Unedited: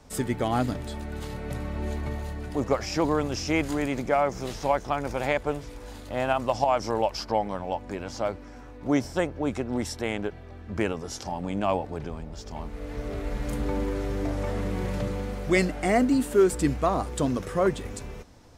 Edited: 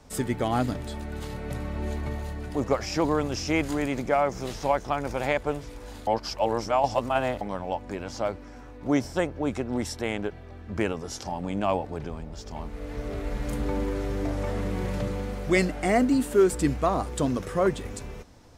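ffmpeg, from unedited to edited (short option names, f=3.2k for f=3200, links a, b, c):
-filter_complex "[0:a]asplit=3[a][b][c];[a]atrim=end=6.072[d];[b]atrim=start=6.068:end=7.412,asetpts=PTS-STARTPTS,areverse[e];[c]atrim=start=7.408[f];[d][e]acrossfade=d=0.004:c1=hsin:c2=hsin[g];[g][f]acrossfade=d=0.004:c1=hsin:c2=hsin"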